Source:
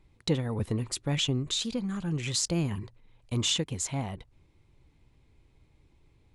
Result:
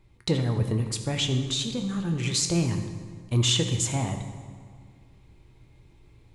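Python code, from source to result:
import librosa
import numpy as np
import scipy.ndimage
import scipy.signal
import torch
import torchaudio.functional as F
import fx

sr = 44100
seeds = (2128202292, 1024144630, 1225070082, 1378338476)

y = fx.rev_fdn(x, sr, rt60_s=1.8, lf_ratio=1.1, hf_ratio=0.7, size_ms=50.0, drr_db=4.5)
y = fx.rider(y, sr, range_db=10, speed_s=2.0)
y = y * librosa.db_to_amplitude(1.0)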